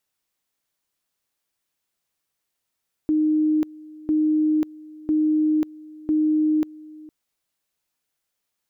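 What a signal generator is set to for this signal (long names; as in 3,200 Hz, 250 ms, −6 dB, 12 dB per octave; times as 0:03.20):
tone at two levels in turn 308 Hz −16.5 dBFS, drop 22 dB, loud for 0.54 s, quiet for 0.46 s, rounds 4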